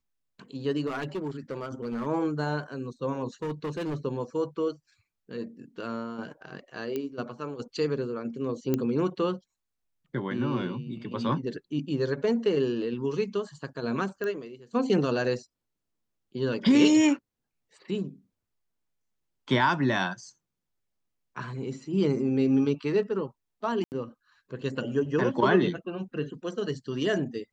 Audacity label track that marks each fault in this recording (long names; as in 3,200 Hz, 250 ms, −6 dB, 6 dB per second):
0.860000	2.070000	clipping −28 dBFS
3.420000	3.960000	clipping −28 dBFS
6.960000	6.960000	click −19 dBFS
8.740000	8.740000	click −13 dBFS
14.240000	14.240000	click −21 dBFS
23.840000	23.920000	drop-out 79 ms